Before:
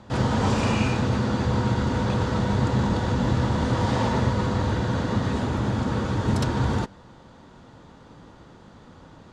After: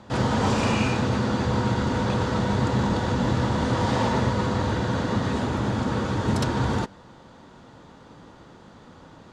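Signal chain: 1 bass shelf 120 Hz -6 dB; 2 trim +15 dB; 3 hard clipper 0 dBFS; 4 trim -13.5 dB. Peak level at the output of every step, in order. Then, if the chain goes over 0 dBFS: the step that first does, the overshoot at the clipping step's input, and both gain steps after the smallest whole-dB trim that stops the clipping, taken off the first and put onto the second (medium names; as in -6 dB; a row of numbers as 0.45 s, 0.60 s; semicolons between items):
-11.5 dBFS, +3.5 dBFS, 0.0 dBFS, -13.5 dBFS; step 2, 3.5 dB; step 2 +11 dB, step 4 -9.5 dB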